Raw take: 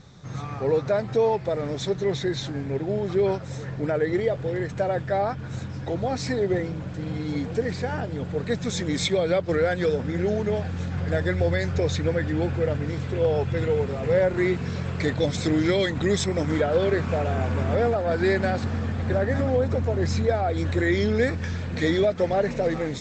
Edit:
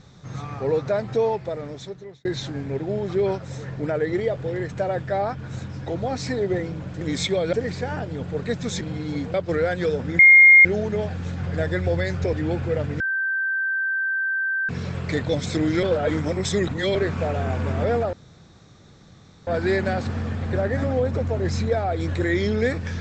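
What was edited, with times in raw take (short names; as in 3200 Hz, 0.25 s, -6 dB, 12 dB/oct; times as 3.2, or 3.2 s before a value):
1.19–2.25 fade out
7.01–7.54 swap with 8.82–9.34
10.19 add tone 2130 Hz -7 dBFS 0.46 s
11.87–12.24 cut
12.91–14.6 bleep 1560 Hz -21 dBFS
15.74–16.86 reverse
18.04 insert room tone 1.34 s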